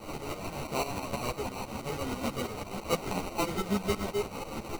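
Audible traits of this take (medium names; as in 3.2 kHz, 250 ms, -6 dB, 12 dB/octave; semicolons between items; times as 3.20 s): a quantiser's noise floor 6-bit, dither triangular; tremolo saw up 6.1 Hz, depth 80%; aliases and images of a low sample rate 1.7 kHz, jitter 0%; a shimmering, thickened sound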